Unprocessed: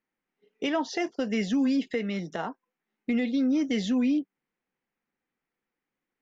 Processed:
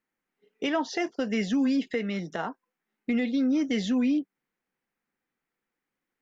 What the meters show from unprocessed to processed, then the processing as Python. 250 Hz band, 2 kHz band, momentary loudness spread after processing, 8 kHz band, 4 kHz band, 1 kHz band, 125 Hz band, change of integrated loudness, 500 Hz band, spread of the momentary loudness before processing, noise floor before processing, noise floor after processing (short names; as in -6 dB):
0.0 dB, +1.0 dB, 9 LU, n/a, 0.0 dB, +0.5 dB, 0.0 dB, 0.0 dB, 0.0 dB, 10 LU, under -85 dBFS, under -85 dBFS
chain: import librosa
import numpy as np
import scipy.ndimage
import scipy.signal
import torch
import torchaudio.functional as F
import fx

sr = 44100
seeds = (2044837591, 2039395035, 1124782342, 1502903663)

y = fx.peak_eq(x, sr, hz=1500.0, db=2.5, octaves=0.77)